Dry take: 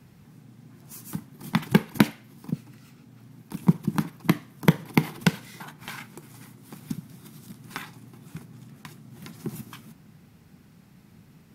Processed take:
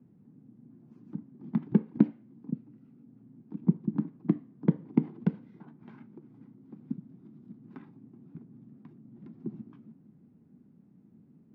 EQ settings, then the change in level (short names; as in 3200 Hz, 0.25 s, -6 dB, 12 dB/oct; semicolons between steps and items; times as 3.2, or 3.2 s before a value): band-pass 260 Hz, Q 2; air absorption 150 m; 0.0 dB